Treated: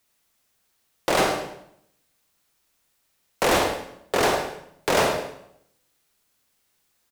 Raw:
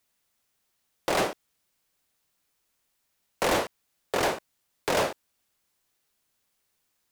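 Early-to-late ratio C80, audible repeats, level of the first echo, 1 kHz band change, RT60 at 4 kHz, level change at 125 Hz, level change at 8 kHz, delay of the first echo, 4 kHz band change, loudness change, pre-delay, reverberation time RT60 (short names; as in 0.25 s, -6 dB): 7.0 dB, 1, -12.5 dB, +5.5 dB, 0.65 s, +6.0 dB, +5.5 dB, 0.105 s, +5.5 dB, +4.5 dB, 38 ms, 0.75 s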